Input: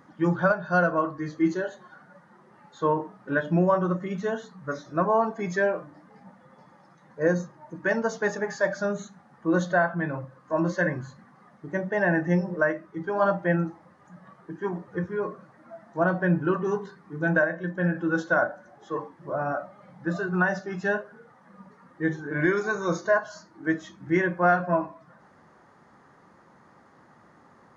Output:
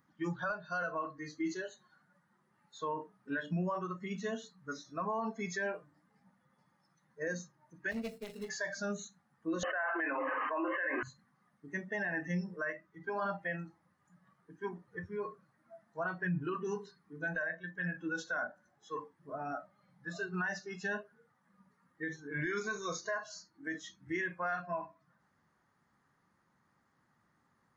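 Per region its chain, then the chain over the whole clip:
7.91–8.49 s: median filter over 41 samples + transformer saturation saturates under 590 Hz
9.63–11.03 s: brick-wall FIR band-pass 260–3100 Hz + bass shelf 330 Hz -10.5 dB + level flattener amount 100%
whole clip: spectral noise reduction 13 dB; peaking EQ 520 Hz -10.5 dB 2.3 oct; peak limiter -27.5 dBFS

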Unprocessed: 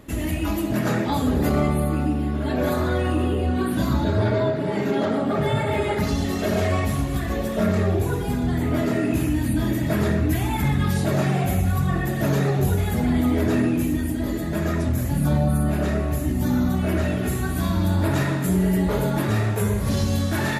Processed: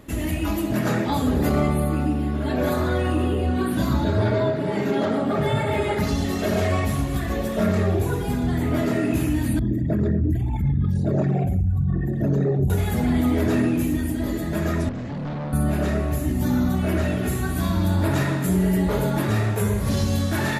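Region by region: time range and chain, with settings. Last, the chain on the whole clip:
9.59–12.70 s: resonances exaggerated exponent 2 + peaking EQ 6 kHz +10.5 dB 1.5 oct
14.89–15.53 s: Chebyshev band-pass 160–4800 Hz + hard clipper -27 dBFS + distance through air 120 m
whole clip: none

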